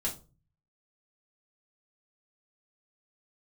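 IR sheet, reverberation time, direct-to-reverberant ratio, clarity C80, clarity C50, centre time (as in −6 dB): non-exponential decay, −5.0 dB, 19.0 dB, 12.0 dB, 17 ms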